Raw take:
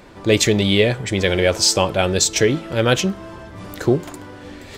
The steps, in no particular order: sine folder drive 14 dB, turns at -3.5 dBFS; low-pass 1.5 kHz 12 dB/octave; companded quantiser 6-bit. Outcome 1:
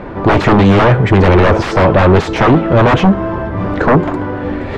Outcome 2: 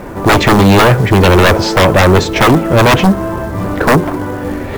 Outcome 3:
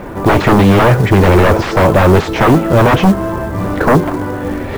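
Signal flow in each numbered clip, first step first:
companded quantiser > sine folder > low-pass; low-pass > companded quantiser > sine folder; sine folder > low-pass > companded quantiser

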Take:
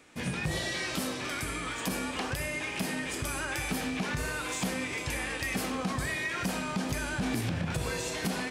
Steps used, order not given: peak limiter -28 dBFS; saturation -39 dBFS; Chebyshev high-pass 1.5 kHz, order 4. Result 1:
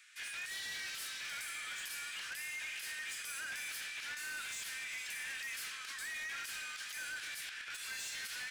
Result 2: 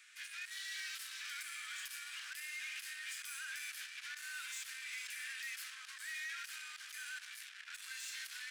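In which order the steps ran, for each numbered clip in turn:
Chebyshev high-pass > peak limiter > saturation; peak limiter > saturation > Chebyshev high-pass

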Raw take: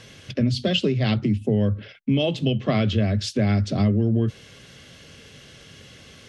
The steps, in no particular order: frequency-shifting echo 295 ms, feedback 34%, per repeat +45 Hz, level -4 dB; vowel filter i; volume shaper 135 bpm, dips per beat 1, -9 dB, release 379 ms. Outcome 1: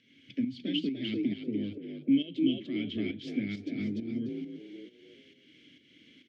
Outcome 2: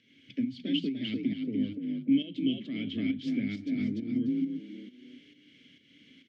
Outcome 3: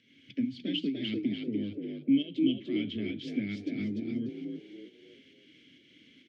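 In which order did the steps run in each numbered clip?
vowel filter > frequency-shifting echo > volume shaper; frequency-shifting echo > volume shaper > vowel filter; volume shaper > vowel filter > frequency-shifting echo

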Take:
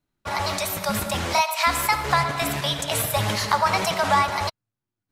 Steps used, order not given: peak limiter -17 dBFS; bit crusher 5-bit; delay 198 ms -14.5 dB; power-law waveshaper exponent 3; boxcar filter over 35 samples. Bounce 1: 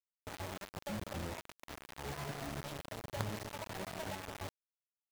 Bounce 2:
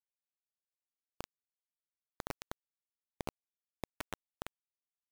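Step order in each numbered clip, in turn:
delay > peak limiter > boxcar filter > bit crusher > power-law waveshaper; peak limiter > delay > power-law waveshaper > boxcar filter > bit crusher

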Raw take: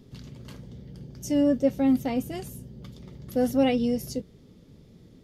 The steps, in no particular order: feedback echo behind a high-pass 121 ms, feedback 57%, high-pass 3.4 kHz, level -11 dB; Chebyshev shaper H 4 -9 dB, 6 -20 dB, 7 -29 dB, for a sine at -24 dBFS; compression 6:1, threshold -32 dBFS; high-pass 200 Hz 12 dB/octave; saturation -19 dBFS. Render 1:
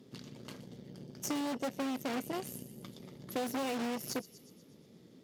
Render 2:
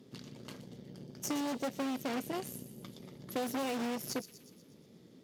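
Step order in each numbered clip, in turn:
feedback echo behind a high-pass > Chebyshev shaper > high-pass > compression > saturation; Chebyshev shaper > saturation > high-pass > compression > feedback echo behind a high-pass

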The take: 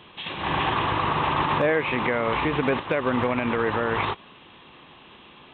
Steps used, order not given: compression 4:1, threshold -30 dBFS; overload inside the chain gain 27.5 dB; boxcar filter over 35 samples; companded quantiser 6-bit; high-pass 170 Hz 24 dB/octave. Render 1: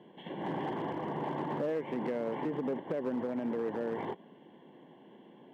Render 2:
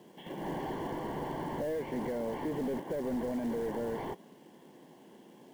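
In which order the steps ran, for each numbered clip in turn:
companded quantiser > boxcar filter > compression > overload inside the chain > high-pass; high-pass > overload inside the chain > boxcar filter > compression > companded quantiser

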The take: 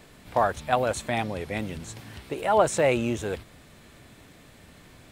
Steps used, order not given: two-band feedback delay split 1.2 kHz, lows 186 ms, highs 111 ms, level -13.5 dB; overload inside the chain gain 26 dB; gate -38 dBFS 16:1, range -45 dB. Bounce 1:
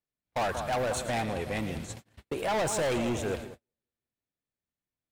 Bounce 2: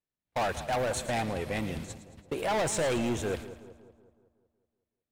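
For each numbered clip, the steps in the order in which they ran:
two-band feedback delay > gate > overload inside the chain; gate > overload inside the chain > two-band feedback delay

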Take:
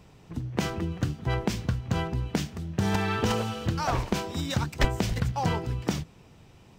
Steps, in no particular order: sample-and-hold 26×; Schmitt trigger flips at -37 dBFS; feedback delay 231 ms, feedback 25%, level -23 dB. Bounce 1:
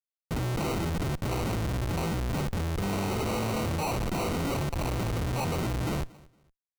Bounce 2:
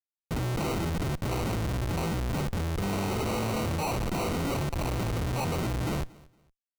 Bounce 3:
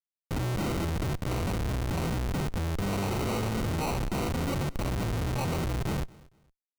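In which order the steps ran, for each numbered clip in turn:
Schmitt trigger > feedback delay > sample-and-hold; Schmitt trigger > sample-and-hold > feedback delay; sample-and-hold > Schmitt trigger > feedback delay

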